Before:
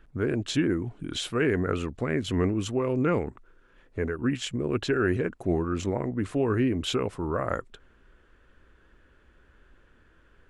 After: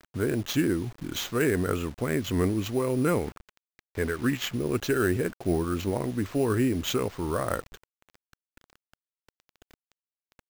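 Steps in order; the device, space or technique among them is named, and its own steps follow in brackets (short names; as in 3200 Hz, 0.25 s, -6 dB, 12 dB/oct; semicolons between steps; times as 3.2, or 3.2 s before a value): early 8-bit sampler (sample-rate reducer 9900 Hz, jitter 0%; bit-crush 8-bit); 3.26–4.55 bell 1800 Hz +4.5 dB 1.8 oct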